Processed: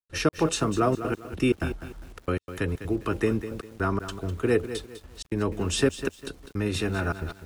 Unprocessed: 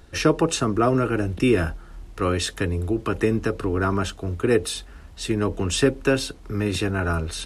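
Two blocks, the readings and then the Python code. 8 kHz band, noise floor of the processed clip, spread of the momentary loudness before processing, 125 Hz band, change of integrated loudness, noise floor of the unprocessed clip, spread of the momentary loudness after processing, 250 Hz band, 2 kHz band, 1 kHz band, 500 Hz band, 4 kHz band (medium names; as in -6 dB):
-5.0 dB, -55 dBFS, 8 LU, -5.0 dB, -4.5 dB, -44 dBFS, 12 LU, -4.5 dB, -4.5 dB, -4.5 dB, -4.5 dB, -5.5 dB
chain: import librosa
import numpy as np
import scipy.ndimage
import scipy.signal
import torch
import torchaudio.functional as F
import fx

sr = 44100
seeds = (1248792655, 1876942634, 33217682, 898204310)

y = fx.step_gate(x, sr, bpm=158, pattern='.xx.xxxxxx.x.', floor_db=-60.0, edge_ms=4.5)
y = fx.echo_crushed(y, sr, ms=201, feedback_pct=35, bits=7, wet_db=-11.0)
y = F.gain(torch.from_numpy(y), -3.5).numpy()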